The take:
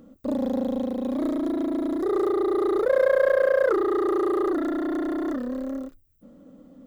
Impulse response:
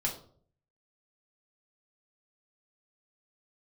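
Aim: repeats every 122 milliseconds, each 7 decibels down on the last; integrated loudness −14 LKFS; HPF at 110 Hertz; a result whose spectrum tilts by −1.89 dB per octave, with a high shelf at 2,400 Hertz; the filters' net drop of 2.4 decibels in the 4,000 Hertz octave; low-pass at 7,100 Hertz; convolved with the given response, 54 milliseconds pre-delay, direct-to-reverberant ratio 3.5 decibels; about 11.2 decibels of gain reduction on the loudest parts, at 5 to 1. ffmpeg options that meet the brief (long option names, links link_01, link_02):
-filter_complex "[0:a]highpass=110,lowpass=7100,highshelf=frequency=2400:gain=6,equalizer=frequency=4000:width_type=o:gain=-7.5,acompressor=threshold=-29dB:ratio=5,aecho=1:1:122|244|366|488|610:0.447|0.201|0.0905|0.0407|0.0183,asplit=2[link_01][link_02];[1:a]atrim=start_sample=2205,adelay=54[link_03];[link_02][link_03]afir=irnorm=-1:irlink=0,volume=-8dB[link_04];[link_01][link_04]amix=inputs=2:normalize=0,volume=15.5dB"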